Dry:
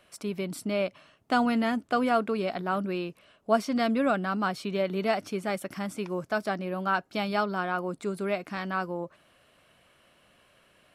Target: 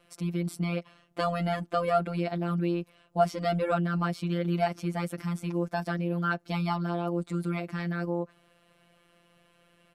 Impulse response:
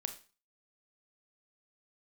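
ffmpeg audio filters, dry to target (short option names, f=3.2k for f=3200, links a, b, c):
-af "afftfilt=real='hypot(re,im)*cos(PI*b)':imag='0':win_size=1024:overlap=0.75,lowshelf=f=460:g=6.5,atempo=1.1"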